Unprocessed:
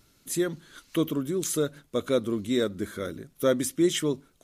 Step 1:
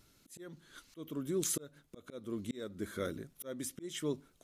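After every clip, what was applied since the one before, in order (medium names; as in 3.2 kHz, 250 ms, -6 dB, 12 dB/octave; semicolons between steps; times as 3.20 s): slow attack 488 ms; trim -4 dB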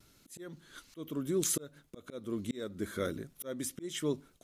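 gate with hold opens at -56 dBFS; trim +3 dB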